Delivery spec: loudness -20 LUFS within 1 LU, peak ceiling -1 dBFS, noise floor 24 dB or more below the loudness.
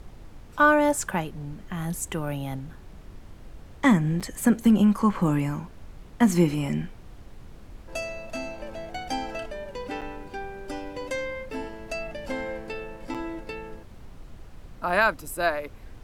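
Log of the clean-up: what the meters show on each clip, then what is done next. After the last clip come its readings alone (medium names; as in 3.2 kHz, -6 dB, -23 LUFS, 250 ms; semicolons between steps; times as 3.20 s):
dropouts 3; longest dropout 6.8 ms; noise floor -46 dBFS; noise floor target -51 dBFS; loudness -26.5 LUFS; peak level -6.0 dBFS; loudness target -20.0 LUFS
-> interpolate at 4.20/10.01/13.14 s, 6.8 ms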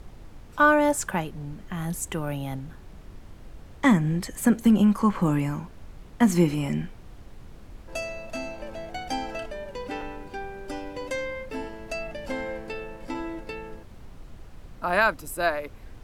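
dropouts 0; noise floor -46 dBFS; noise floor target -51 dBFS
-> noise print and reduce 6 dB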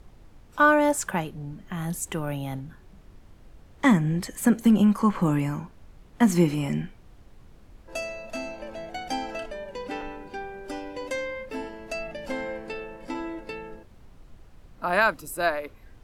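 noise floor -52 dBFS; loudness -26.5 LUFS; peak level -6.5 dBFS; loudness target -20.0 LUFS
-> trim +6.5 dB; peak limiter -1 dBFS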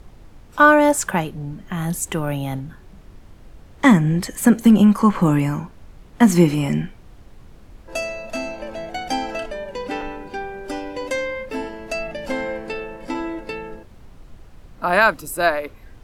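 loudness -20.0 LUFS; peak level -1.0 dBFS; noise floor -45 dBFS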